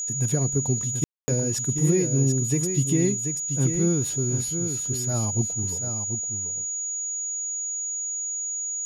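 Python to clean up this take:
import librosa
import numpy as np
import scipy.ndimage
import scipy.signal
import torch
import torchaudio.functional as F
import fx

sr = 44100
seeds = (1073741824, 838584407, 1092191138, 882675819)

y = fx.notch(x, sr, hz=6800.0, q=30.0)
y = fx.fix_ambience(y, sr, seeds[0], print_start_s=6.75, print_end_s=7.25, start_s=1.04, end_s=1.28)
y = fx.fix_echo_inverse(y, sr, delay_ms=735, level_db=-7.5)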